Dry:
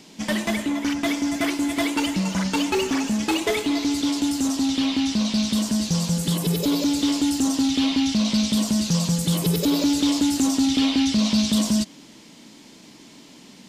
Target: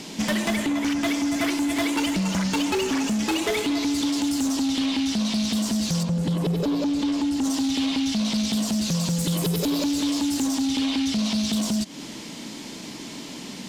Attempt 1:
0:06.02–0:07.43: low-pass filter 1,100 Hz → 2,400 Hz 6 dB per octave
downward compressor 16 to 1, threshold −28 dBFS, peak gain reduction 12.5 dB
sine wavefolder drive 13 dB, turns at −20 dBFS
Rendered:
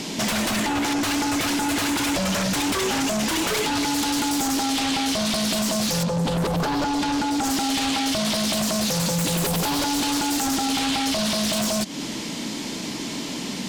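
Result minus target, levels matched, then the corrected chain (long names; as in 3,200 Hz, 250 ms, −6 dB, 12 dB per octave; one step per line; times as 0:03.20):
sine wavefolder: distortion +18 dB
0:06.02–0:07.43: low-pass filter 1,100 Hz → 2,400 Hz 6 dB per octave
downward compressor 16 to 1, threshold −28 dBFS, peak gain reduction 12.5 dB
sine wavefolder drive 6 dB, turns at −20 dBFS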